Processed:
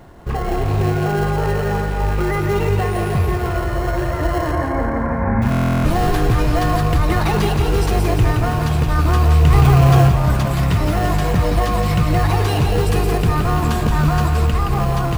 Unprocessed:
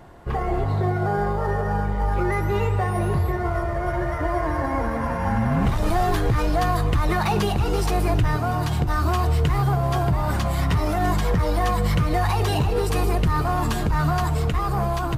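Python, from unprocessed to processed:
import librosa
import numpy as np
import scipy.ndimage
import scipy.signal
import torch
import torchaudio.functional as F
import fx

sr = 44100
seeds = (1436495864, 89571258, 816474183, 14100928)

p1 = fx.rattle_buzz(x, sr, strikes_db=-21.0, level_db=-29.0)
p2 = fx.sample_hold(p1, sr, seeds[0], rate_hz=1200.0, jitter_pct=0)
p3 = p1 + (p2 * 10.0 ** (-8.0 / 20.0))
p4 = fx.steep_lowpass(p3, sr, hz=2300.0, slope=96, at=(4.51, 5.42))
p5 = fx.echo_feedback(p4, sr, ms=171, feedback_pct=54, wet_db=-5.5)
p6 = fx.buffer_glitch(p5, sr, at_s=(5.5,), block=1024, repeats=14)
p7 = fx.env_flatten(p6, sr, amount_pct=100, at=(9.46, 10.08))
y = p7 * 10.0 ** (1.5 / 20.0)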